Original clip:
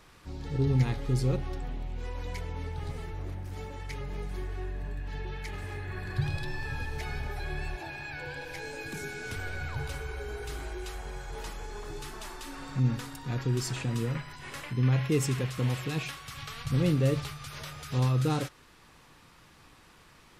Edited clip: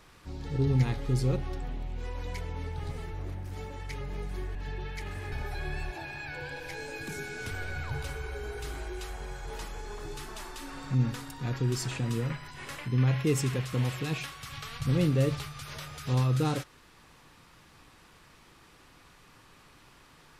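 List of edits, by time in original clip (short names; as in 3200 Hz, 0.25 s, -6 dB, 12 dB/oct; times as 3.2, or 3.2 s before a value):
4.55–5.02 cut
5.79–7.17 cut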